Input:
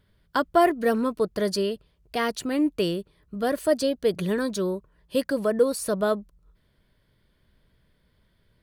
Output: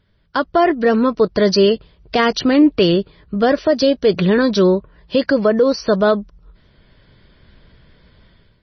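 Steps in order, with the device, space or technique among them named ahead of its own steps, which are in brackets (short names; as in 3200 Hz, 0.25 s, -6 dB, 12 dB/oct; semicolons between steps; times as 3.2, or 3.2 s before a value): low-bitrate web radio (AGC gain up to 13 dB; limiter -8 dBFS, peak gain reduction 6.5 dB; gain +3.5 dB; MP3 24 kbps 24000 Hz)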